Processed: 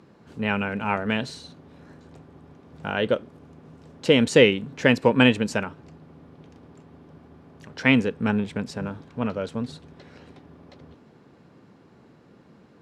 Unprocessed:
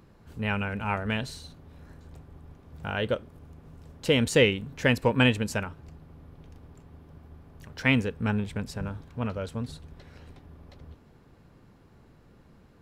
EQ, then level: band-pass 210–7400 Hz; bass shelf 350 Hz +6.5 dB; +3.5 dB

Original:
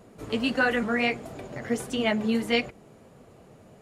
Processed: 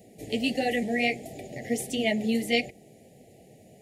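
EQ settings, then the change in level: high-pass 95 Hz 6 dB/octave; elliptic band-stop 770–1900 Hz, stop band 40 dB; treble shelf 8.2 kHz +9.5 dB; 0.0 dB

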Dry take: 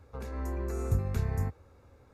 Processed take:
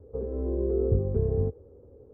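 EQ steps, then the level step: resonant low-pass 440 Hz, resonance Q 4.9; distance through air 240 m; +2.5 dB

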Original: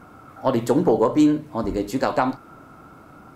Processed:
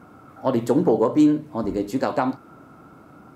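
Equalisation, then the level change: high-pass 200 Hz 6 dB/octave; bass shelf 420 Hz +9 dB; -4.0 dB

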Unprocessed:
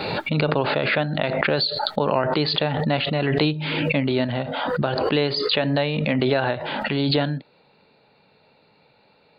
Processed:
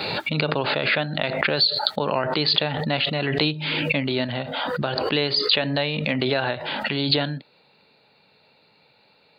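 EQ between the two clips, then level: high-pass 52 Hz; treble shelf 2.2 kHz +9.5 dB; -3.5 dB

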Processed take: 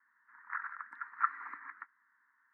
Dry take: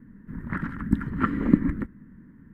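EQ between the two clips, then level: high-pass 970 Hz 24 dB/octave; low-pass 2.2 kHz 12 dB/octave; static phaser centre 1.3 kHz, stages 4; -1.0 dB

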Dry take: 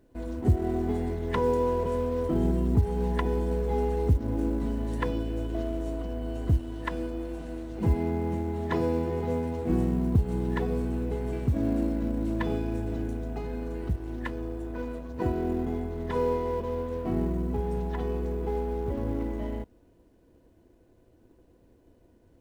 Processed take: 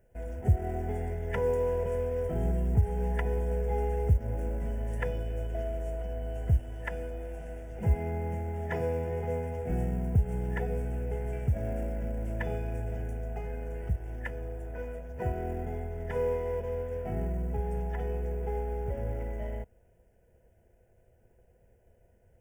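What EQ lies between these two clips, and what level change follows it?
static phaser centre 1.1 kHz, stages 6; 0.0 dB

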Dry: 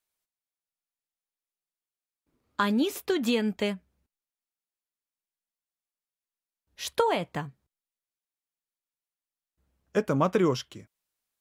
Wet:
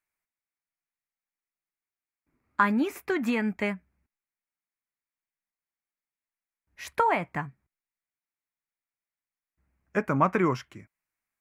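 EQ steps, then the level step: dynamic bell 1 kHz, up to +4 dB, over -35 dBFS, Q 0.89; peaking EQ 490 Hz -7 dB 0.57 oct; resonant high shelf 2.7 kHz -6.5 dB, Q 3; 0.0 dB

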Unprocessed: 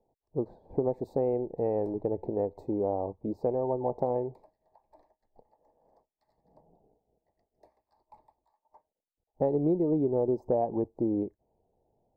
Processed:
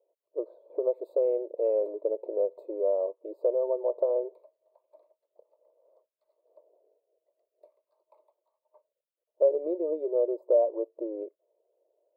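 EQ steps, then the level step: brick-wall FIR high-pass 300 Hz; peaking EQ 580 Hz +12 dB 0.43 oct; static phaser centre 1.2 kHz, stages 8; -2.5 dB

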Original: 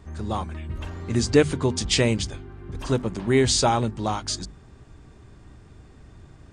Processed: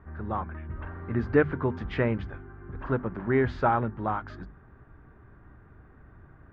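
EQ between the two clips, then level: four-pole ladder low-pass 1.8 kHz, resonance 50%; +4.5 dB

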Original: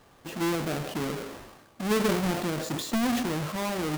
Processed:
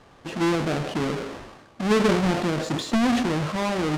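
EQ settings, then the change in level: distance through air 65 m; +5.5 dB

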